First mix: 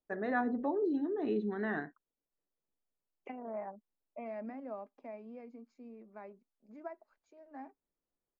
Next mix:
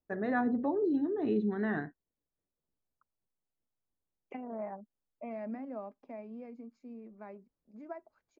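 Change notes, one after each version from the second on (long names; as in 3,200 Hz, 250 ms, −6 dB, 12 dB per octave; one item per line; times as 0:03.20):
second voice: entry +1.05 s
master: add parametric band 87 Hz +12.5 dB 2.1 octaves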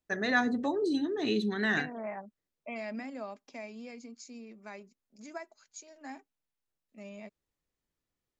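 second voice: entry −2.55 s
master: remove low-pass filter 1,000 Hz 12 dB per octave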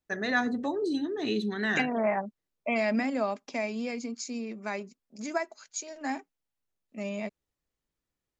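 second voice +11.5 dB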